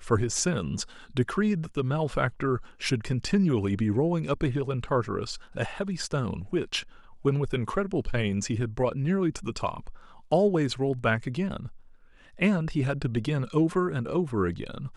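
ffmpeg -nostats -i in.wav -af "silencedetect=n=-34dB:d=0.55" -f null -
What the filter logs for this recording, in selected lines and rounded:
silence_start: 11.68
silence_end: 12.41 | silence_duration: 0.73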